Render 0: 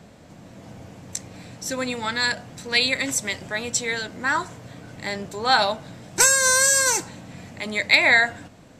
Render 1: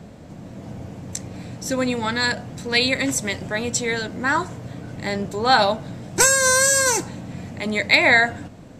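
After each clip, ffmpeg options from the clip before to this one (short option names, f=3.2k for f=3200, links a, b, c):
-af "tiltshelf=f=680:g=4,volume=4dB"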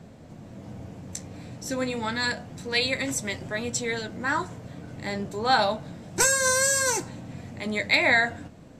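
-af "flanger=delay=7.7:depth=6.5:regen=-61:speed=0.28:shape=sinusoidal,volume=-1.5dB"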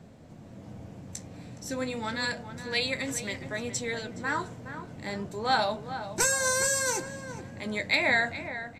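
-filter_complex "[0:a]asplit=2[a][b];[b]adelay=418,lowpass=f=1.9k:p=1,volume=-10dB,asplit=2[c][d];[d]adelay=418,lowpass=f=1.9k:p=1,volume=0.33,asplit=2[e][f];[f]adelay=418,lowpass=f=1.9k:p=1,volume=0.33,asplit=2[g][h];[h]adelay=418,lowpass=f=1.9k:p=1,volume=0.33[i];[a][c][e][g][i]amix=inputs=5:normalize=0,volume=-4dB"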